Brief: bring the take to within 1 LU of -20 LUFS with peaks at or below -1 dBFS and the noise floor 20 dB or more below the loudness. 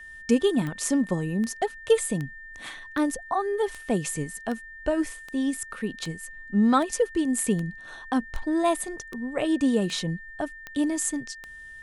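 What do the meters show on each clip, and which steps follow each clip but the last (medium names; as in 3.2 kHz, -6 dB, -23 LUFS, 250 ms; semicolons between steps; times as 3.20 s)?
clicks found 15; steady tone 1.8 kHz; tone level -41 dBFS; loudness -27.0 LUFS; peak level -9.5 dBFS; loudness target -20.0 LUFS
-> de-click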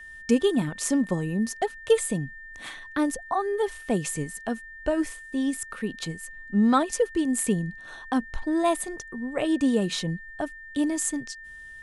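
clicks found 0; steady tone 1.8 kHz; tone level -41 dBFS
-> band-stop 1.8 kHz, Q 30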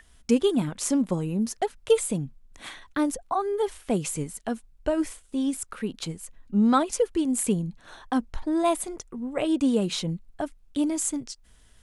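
steady tone not found; loudness -27.0 LUFS; peak level -10.0 dBFS; loudness target -20.0 LUFS
-> trim +7 dB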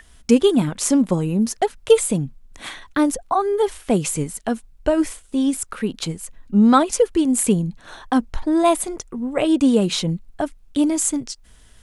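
loudness -20.0 LUFS; peak level -3.0 dBFS; noise floor -49 dBFS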